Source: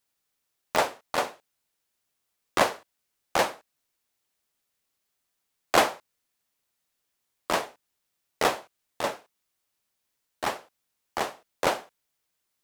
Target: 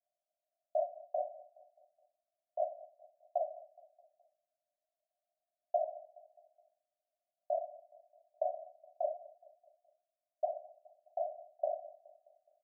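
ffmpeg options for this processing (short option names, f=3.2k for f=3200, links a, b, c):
-filter_complex "[0:a]acompressor=threshold=-33dB:ratio=6,asuperpass=centerf=650:order=8:qfactor=4.5,asplit=2[a][b];[b]aecho=0:1:210|420|630|840:0.1|0.051|0.026|0.0133[c];[a][c]amix=inputs=2:normalize=0,volume=9dB"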